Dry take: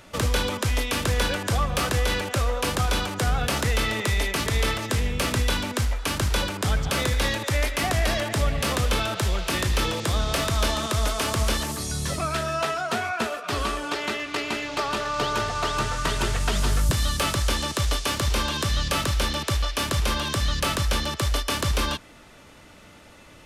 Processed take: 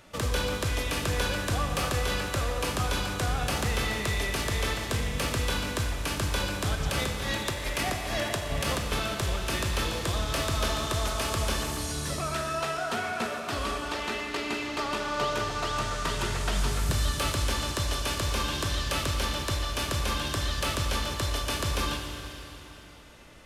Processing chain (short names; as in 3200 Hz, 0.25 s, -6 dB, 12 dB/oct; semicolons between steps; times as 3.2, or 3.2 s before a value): 6.75–8.92 negative-ratio compressor -25 dBFS, ratio -0.5; Schroeder reverb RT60 3.2 s, combs from 30 ms, DRR 3.5 dB; gain -5.5 dB